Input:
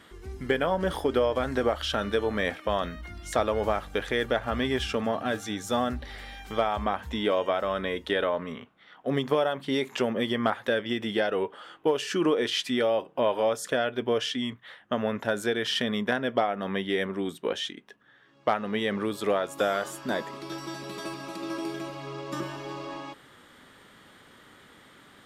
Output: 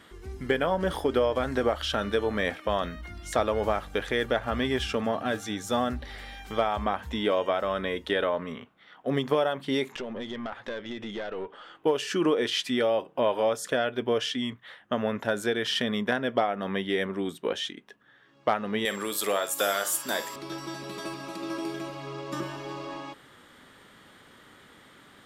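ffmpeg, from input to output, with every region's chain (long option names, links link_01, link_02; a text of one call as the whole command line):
ffmpeg -i in.wav -filter_complex "[0:a]asettb=1/sr,asplit=3[link_01][link_02][link_03];[link_01]atrim=end=9.924[link_04];[link_02]atrim=start=9.92:end=11.75,asetpts=PTS-STARTPTS,afade=type=in:duration=0.004:curve=qsin,afade=type=out:start_time=1.826:duration=0.004:curve=qsin,lowpass=5700,acompressor=threshold=-32dB:ratio=2:attack=3.2:release=140:knee=1:detection=peak,aeval=exprs='(tanh(20*val(0)+0.4)-tanh(0.4))/20':channel_layout=same[link_05];[link_03]atrim=start=11.746[link_06];[link_04][link_05]acrossfade=duration=0.004:curve1=hsin:curve2=qsin[link_07];[link_07][link_06]acrossfade=duration=0.004:curve1=qsin:curve2=hsin,asettb=1/sr,asplit=3[link_08][link_09][link_10];[link_08]atrim=end=18.854[link_11];[link_09]atrim=start=18.85:end=20.36,asetpts=PTS-STARTPTS,afade=type=in:duration=0.004:curve=qsin,afade=type=out:start_time=1.506:duration=0.004:curve=qsin,aemphasis=mode=production:type=riaa,asplit=2[link_12][link_13];[link_13]adelay=50,volume=-12dB[link_14];[link_12][link_14]amix=inputs=2:normalize=0,atrim=end_sample=66591,aeval=exprs='val(0)+0.00447*sin(2*PI*7500*n/s)':channel_layout=same[link_15];[link_10]atrim=start=20.356[link_16];[link_11][link_15]acrossfade=duration=0.004:curve1=hsin:curve2=qsin[link_17];[link_17][link_16]acrossfade=duration=0.004:curve1=qsin:curve2=hsin" out.wav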